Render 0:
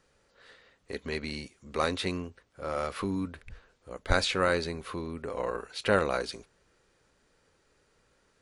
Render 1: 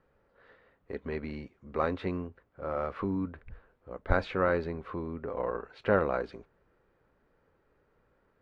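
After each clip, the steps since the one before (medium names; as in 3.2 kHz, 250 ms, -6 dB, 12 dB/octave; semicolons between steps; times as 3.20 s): low-pass 1.5 kHz 12 dB/octave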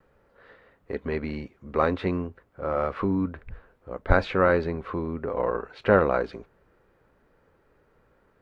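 vibrato 0.31 Hz 9.5 cents; trim +6.5 dB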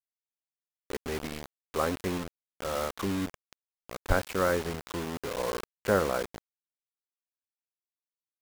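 bit crusher 5-bit; trim -6 dB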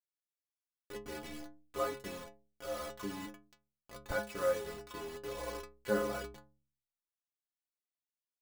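inharmonic resonator 62 Hz, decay 0.71 s, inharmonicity 0.03; trim +3 dB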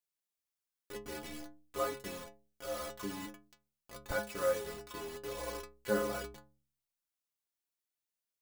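treble shelf 5.2 kHz +4.5 dB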